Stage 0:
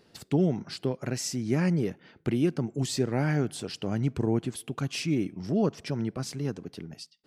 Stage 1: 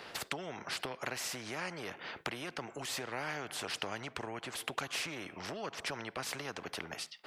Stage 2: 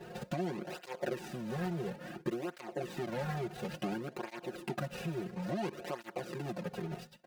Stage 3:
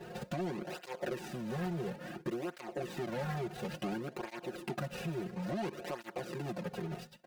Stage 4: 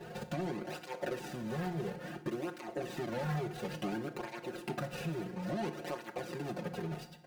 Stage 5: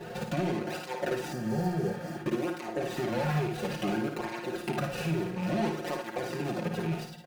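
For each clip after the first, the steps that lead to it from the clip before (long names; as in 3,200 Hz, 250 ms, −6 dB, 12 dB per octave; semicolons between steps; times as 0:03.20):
downward compressor 5 to 1, threshold −34 dBFS, peak gain reduction 13 dB; three-way crossover with the lows and the highs turned down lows −22 dB, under 530 Hz, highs −18 dB, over 2,800 Hz; every bin compressed towards the loudest bin 2 to 1; level +9 dB
running median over 41 samples; comb filter 5.6 ms, depth 92%; through-zero flanger with one copy inverted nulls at 0.58 Hz, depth 3.9 ms; level +8.5 dB
soft clipping −29.5 dBFS, distortion −18 dB; level +1 dB
feedback delay network reverb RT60 0.88 s, low-frequency decay 1.1×, high-frequency decay 0.75×, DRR 9 dB
loose part that buzzes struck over −40 dBFS, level −42 dBFS; ambience of single reflections 55 ms −6 dB, 73 ms −10.5 dB; healed spectral selection 0:01.35–0:02.17, 940–4,100 Hz after; level +5.5 dB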